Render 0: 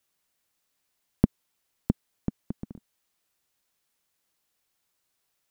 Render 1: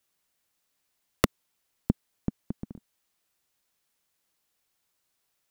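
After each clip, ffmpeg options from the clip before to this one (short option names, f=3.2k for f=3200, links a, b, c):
-af "aeval=exprs='(mod(2.24*val(0)+1,2)-1)/2.24':c=same"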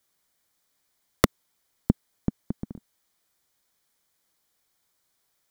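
-af "bandreject=f=2.7k:w=6.2,volume=3.5dB"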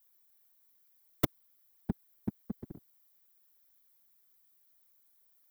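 -af "asoftclip=type=tanh:threshold=-9dB,afftfilt=real='hypot(re,im)*cos(2*PI*random(0))':imag='hypot(re,im)*sin(2*PI*random(1))':win_size=512:overlap=0.75,aexciter=amount=5.9:drive=3.3:freq=11k,volume=-1.5dB"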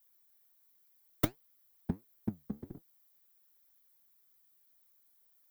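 -af "flanger=delay=5.6:depth=9:regen=68:speed=1.4:shape=sinusoidal,volume=4dB"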